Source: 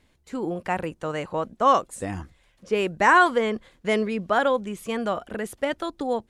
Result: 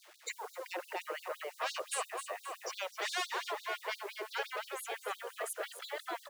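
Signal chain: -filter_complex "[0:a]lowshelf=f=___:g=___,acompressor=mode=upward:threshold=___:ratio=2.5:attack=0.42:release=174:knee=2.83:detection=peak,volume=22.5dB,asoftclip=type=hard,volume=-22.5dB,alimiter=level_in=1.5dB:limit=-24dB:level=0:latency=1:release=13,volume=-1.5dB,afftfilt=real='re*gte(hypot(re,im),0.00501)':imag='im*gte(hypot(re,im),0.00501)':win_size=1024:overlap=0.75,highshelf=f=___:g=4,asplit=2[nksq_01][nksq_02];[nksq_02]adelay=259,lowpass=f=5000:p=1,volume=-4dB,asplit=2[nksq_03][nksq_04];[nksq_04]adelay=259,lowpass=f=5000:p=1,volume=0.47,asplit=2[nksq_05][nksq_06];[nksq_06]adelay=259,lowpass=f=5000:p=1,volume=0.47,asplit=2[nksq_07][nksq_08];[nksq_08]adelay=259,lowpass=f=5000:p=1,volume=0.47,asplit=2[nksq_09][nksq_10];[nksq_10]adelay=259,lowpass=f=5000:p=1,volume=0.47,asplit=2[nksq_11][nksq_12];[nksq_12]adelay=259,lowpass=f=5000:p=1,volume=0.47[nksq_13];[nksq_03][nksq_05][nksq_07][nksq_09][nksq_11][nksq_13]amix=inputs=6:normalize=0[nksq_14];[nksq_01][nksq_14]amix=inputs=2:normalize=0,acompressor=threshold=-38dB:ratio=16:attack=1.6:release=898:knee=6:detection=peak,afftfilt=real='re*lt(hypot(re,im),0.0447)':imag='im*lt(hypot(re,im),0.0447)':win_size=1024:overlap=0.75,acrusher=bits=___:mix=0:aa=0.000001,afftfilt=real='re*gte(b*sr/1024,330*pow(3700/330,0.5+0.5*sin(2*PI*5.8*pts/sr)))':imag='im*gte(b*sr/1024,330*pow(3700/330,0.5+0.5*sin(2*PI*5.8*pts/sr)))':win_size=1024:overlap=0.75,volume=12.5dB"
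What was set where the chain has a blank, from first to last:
250, 8.5, -40dB, 9500, 10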